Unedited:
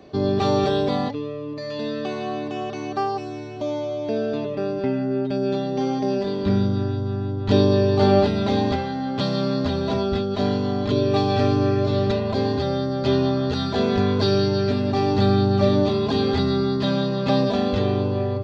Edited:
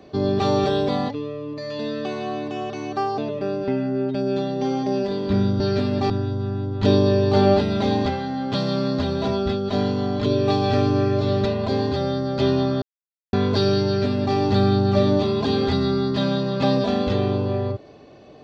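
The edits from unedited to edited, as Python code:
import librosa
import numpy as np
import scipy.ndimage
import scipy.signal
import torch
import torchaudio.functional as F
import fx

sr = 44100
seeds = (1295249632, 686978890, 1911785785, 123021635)

y = fx.edit(x, sr, fx.cut(start_s=3.18, length_s=1.16),
    fx.silence(start_s=13.48, length_s=0.51),
    fx.duplicate(start_s=14.52, length_s=0.5, to_s=6.76), tone=tone)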